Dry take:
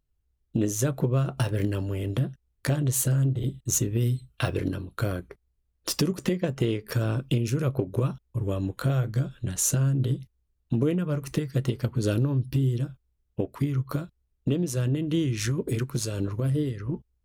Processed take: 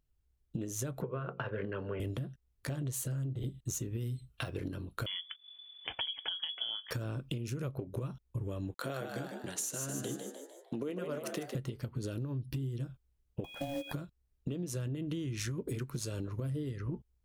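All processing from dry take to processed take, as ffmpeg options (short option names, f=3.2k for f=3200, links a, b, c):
-filter_complex "[0:a]asettb=1/sr,asplit=3[a][b][c];[a]atrim=end=1.024[d];[b]atrim=start=1.02:end=2,asetpts=PTS-STARTPTS,afade=t=in:d=0.004:c=qsin,afade=t=out:st=0.976:d=0.004:c=qsin,highpass=150,equalizer=f=310:t=q:w=4:g=-7,equalizer=f=450:t=q:w=4:g=9,equalizer=f=1.1k:t=q:w=4:g=6,equalizer=f=1.5k:t=q:w=4:g=9,lowpass=f=2.9k:w=0.5412,lowpass=f=2.9k:w=1.3066,bandreject=f=60:t=h:w=6,bandreject=f=120:t=h:w=6,bandreject=f=180:t=h:w=6,bandreject=f=240:t=h:w=6,bandreject=f=300:t=h:w=6,bandreject=f=360:t=h:w=6,bandreject=f=420:t=h:w=6,bandreject=f=480:t=h:w=6,bandreject=f=540:t=h:w=6[e];[c]atrim=start=1.996[f];[d][e]acrossfade=d=0.004:c1=hsin:c2=qsin[g];[g][f]acrossfade=d=0.004:c1=qsin:c2=hsin,asettb=1/sr,asplit=3[h][i][j];[h]atrim=end=5.064[k];[i]atrim=start=5.06:end=6.91,asetpts=PTS-STARTPTS,afade=t=in:d=0.004:c=qsin,afade=t=out:st=1.846:d=0.004:c=qsin,acompressor=mode=upward:threshold=-33dB:ratio=2.5:attack=3.2:release=140:knee=2.83:detection=peak,lowpass=f=3k:t=q:w=0.5098,lowpass=f=3k:t=q:w=0.6013,lowpass=f=3k:t=q:w=0.9,lowpass=f=3k:t=q:w=2.563,afreqshift=-3500[l];[j]atrim=start=6.906[m];[k][l]acrossfade=d=0.004:c1=hsin:c2=qsin[n];[n][m]acrossfade=d=0.004:c1=qsin:c2=hsin,asettb=1/sr,asplit=3[o][p][q];[o]atrim=end=8.744[r];[p]atrim=start=8.74:end=11.55,asetpts=PTS-STARTPTS,afade=t=in:d=0.004:c=qsin,afade=t=out:st=2.806:d=0.004:c=qsin,highpass=320,agate=range=-33dB:threshold=-47dB:ratio=3:release=100:detection=peak,asplit=7[s][t][u][v][w][x][y];[t]adelay=151,afreqshift=71,volume=-7.5dB[z];[u]adelay=302,afreqshift=142,volume=-13.5dB[aa];[v]adelay=453,afreqshift=213,volume=-19.5dB[ab];[w]adelay=604,afreqshift=284,volume=-25.6dB[ac];[x]adelay=755,afreqshift=355,volume=-31.6dB[ad];[y]adelay=906,afreqshift=426,volume=-37.6dB[ae];[s][z][aa][ab][ac][ad][ae]amix=inputs=7:normalize=0,atrim=end_sample=123921[af];[q]atrim=start=11.546[ag];[r][af]acrossfade=d=0.004:c1=hsin:c2=qsin[ah];[ah][ag]acrossfade=d=0.004:c1=qsin:c2=hsin,asettb=1/sr,asplit=3[ai][aj][ak];[ai]atrim=end=13.444[al];[aj]atrim=start=13.44:end=13.93,asetpts=PTS-STARTPTS,afade=t=in:d=0.004:c=qsin,afade=t=out:st=0.486:d=0.004:c=qsin,aeval=exprs='val(0)+0.0141*sin(2*PI*2900*n/s)':c=same,aeval=exprs='val(0)*sin(2*PI*420*n/s)':c=same,acrusher=bits=4:mode=log:mix=0:aa=0.000001[am];[ak]atrim=start=13.926[an];[al][am]acrossfade=d=0.004:c1=hsin:c2=qsin[ao];[ao][an]acrossfade=d=0.004:c1=qsin:c2=hsin,alimiter=limit=-20dB:level=0:latency=1:release=421,acompressor=threshold=-32dB:ratio=6,volume=-1.5dB"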